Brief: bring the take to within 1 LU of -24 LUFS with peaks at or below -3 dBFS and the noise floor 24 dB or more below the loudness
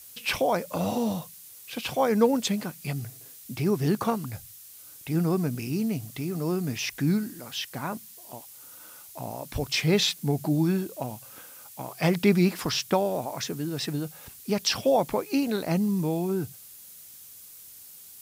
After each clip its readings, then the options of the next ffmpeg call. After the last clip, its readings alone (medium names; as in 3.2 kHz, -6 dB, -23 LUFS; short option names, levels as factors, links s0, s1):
noise floor -48 dBFS; noise floor target -52 dBFS; loudness -27.5 LUFS; peak level -9.0 dBFS; loudness target -24.0 LUFS
-> -af "afftdn=nr=6:nf=-48"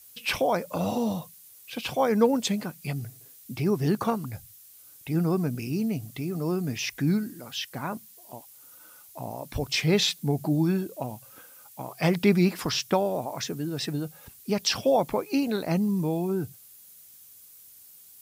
noise floor -52 dBFS; loudness -27.5 LUFS; peak level -9.0 dBFS; loudness target -24.0 LUFS
-> -af "volume=1.5"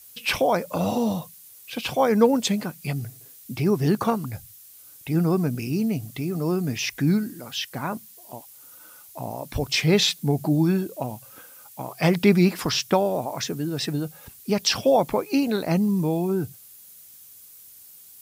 loudness -24.0 LUFS; peak level -5.5 dBFS; noise floor -48 dBFS